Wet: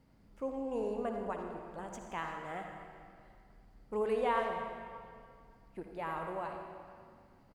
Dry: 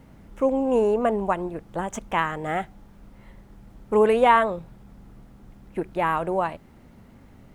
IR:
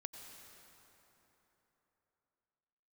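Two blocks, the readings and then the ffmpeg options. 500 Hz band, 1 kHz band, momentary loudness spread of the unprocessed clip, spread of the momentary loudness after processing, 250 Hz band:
-14.0 dB, -14.5 dB, 14 LU, 21 LU, -14.5 dB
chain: -filter_complex "[0:a]equalizer=f=4.7k:t=o:w=0.25:g=11,asplit=2[a][b];[b]adelay=90,highpass=300,lowpass=3.4k,asoftclip=type=hard:threshold=-14dB,volume=-12dB[c];[a][c]amix=inputs=2:normalize=0[d];[1:a]atrim=start_sample=2205,asetrate=74970,aresample=44100[e];[d][e]afir=irnorm=-1:irlink=0,volume=-6.5dB"

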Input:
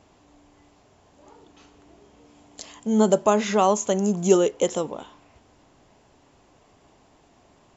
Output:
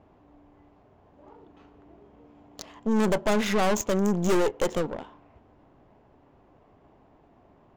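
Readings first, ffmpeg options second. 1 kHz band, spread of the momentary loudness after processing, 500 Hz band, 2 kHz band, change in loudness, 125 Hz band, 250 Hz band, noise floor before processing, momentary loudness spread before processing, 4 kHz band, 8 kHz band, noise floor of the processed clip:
-5.5 dB, 13 LU, -5.0 dB, +3.0 dB, -4.0 dB, -1.0 dB, -3.0 dB, -59 dBFS, 13 LU, -1.0 dB, n/a, -59 dBFS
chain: -af "adynamicsmooth=sensitivity=7:basefreq=1.6k,aeval=exprs='(tanh(17.8*val(0)+0.7)-tanh(0.7))/17.8':c=same,volume=4.5dB"

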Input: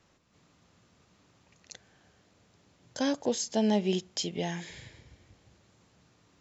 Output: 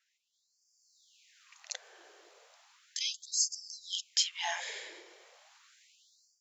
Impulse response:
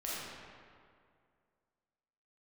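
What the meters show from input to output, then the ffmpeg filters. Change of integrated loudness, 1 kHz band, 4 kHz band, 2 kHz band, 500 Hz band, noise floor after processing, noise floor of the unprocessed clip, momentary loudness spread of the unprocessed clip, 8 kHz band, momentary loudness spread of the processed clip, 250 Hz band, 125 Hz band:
-3.5 dB, -5.0 dB, +4.5 dB, +2.0 dB, -19.5 dB, -79 dBFS, -67 dBFS, 18 LU, n/a, 14 LU, under -35 dB, under -40 dB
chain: -af "dynaudnorm=f=480:g=3:m=15dB,bass=f=250:g=13,treble=f=4k:g=0,afftfilt=real='re*gte(b*sr/1024,320*pow(4600/320,0.5+0.5*sin(2*PI*0.35*pts/sr)))':imag='im*gte(b*sr/1024,320*pow(4600/320,0.5+0.5*sin(2*PI*0.35*pts/sr)))':win_size=1024:overlap=0.75,volume=-7.5dB"

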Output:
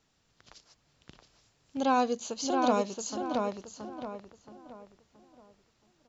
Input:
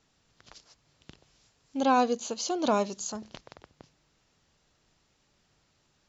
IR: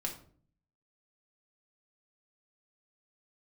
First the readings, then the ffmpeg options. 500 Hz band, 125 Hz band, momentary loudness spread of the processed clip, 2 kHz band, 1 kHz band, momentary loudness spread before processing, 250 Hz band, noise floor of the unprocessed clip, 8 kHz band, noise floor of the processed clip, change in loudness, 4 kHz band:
-0.5 dB, -0.5 dB, 20 LU, -1.0 dB, -0.5 dB, 16 LU, -0.5 dB, -71 dBFS, n/a, -72 dBFS, -2.5 dB, -2.0 dB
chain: -filter_complex "[0:a]asplit=2[a][b];[b]adelay=674,lowpass=f=2.5k:p=1,volume=-3dB,asplit=2[c][d];[d]adelay=674,lowpass=f=2.5k:p=1,volume=0.36,asplit=2[e][f];[f]adelay=674,lowpass=f=2.5k:p=1,volume=0.36,asplit=2[g][h];[h]adelay=674,lowpass=f=2.5k:p=1,volume=0.36,asplit=2[i][j];[j]adelay=674,lowpass=f=2.5k:p=1,volume=0.36[k];[a][c][e][g][i][k]amix=inputs=6:normalize=0,volume=-2.5dB"

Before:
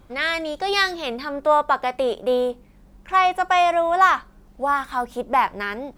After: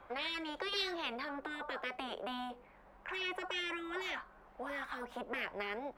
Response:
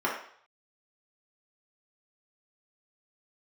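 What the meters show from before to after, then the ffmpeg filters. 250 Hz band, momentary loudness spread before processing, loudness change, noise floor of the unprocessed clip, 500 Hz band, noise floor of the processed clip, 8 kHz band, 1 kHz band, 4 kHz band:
-13.0 dB, 10 LU, -18.5 dB, -51 dBFS, -21.0 dB, -61 dBFS, n/a, -24.0 dB, -11.0 dB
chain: -filter_complex "[0:a]acrossover=split=550 2300:gain=0.0794 1 0.0708[a][b][c];[a][b][c]amix=inputs=3:normalize=0,afftfilt=real='re*lt(hypot(re,im),0.126)':imag='im*lt(hypot(re,im),0.126)':win_size=1024:overlap=0.75,acrossover=split=410|3000[d][e][f];[e]acompressor=threshold=-47dB:ratio=6[g];[d][g][f]amix=inputs=3:normalize=0,volume=5dB"

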